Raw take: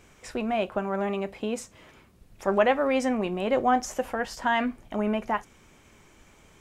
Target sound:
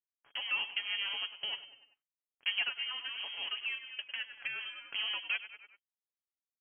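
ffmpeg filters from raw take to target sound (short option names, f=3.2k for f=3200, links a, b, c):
-filter_complex "[0:a]lowshelf=f=400:g=-6,bandreject=f=60:t=h:w=6,bandreject=f=120:t=h:w=6,bandreject=f=180:t=h:w=6,bandreject=f=240:t=h:w=6,aeval=exprs='sgn(val(0))*max(abs(val(0))-0.0141,0)':c=same,highpass=f=83:p=1,equalizer=f=170:t=o:w=0.28:g=12,asplit=5[a][b][c][d][e];[b]adelay=97,afreqshift=34,volume=-15dB[f];[c]adelay=194,afreqshift=68,volume=-21.7dB[g];[d]adelay=291,afreqshift=102,volume=-28.5dB[h];[e]adelay=388,afreqshift=136,volume=-35.2dB[i];[a][f][g][h][i]amix=inputs=5:normalize=0,acrossover=split=580|1800[j][k][l];[j]acompressor=threshold=-37dB:ratio=4[m];[k]acompressor=threshold=-37dB:ratio=4[n];[l]acompressor=threshold=-50dB:ratio=4[o];[m][n][o]amix=inputs=3:normalize=0,lowpass=f=2.9k:t=q:w=0.5098,lowpass=f=2.9k:t=q:w=0.6013,lowpass=f=2.9k:t=q:w=0.9,lowpass=f=2.9k:t=q:w=2.563,afreqshift=-3400,asplit=3[p][q][r];[p]afade=t=out:st=2.68:d=0.02[s];[q]acompressor=threshold=-39dB:ratio=2,afade=t=in:st=2.68:d=0.02,afade=t=out:st=4.8:d=0.02[t];[r]afade=t=in:st=4.8:d=0.02[u];[s][t][u]amix=inputs=3:normalize=0,aecho=1:1:7.1:0.41"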